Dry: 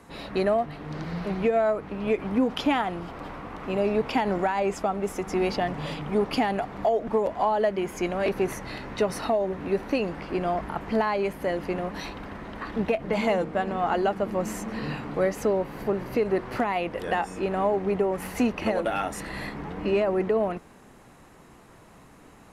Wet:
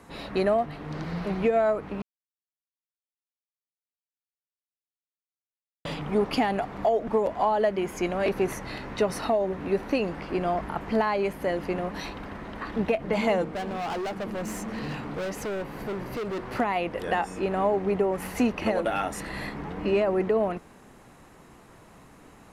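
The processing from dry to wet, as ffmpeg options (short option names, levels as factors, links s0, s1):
-filter_complex "[0:a]asettb=1/sr,asplit=3[s0][s1][s2];[s0]atrim=end=13.464[s3];[s1]atrim=start=13.46:end=16.55,asetpts=PTS-STARTPTS,afade=t=in:d=0.004:c=qsin,afade=t=out:st=3.086:d=0.004:c=qsin,volume=28.2,asoftclip=hard,volume=0.0355[s4];[s2]atrim=start=16.546[s5];[s3][s4]acrossfade=d=0.004:c1=hsin:c2=qsin[s6];[s6][s5]acrossfade=d=0.004:c1=qsin:c2=hsin,asplit=3[s7][s8][s9];[s7]atrim=end=2.02,asetpts=PTS-STARTPTS,afade=t=out:st=2.016:d=0.004:c=hsin[s10];[s8]atrim=start=2.02:end=5.85,asetpts=PTS-STARTPTS,volume=0[s11];[s9]atrim=start=5.85,asetpts=PTS-STARTPTS,afade=t=in:d=0.004:c=hsin[s12];[s10][s11][s12]concat=n=3:v=0:a=1"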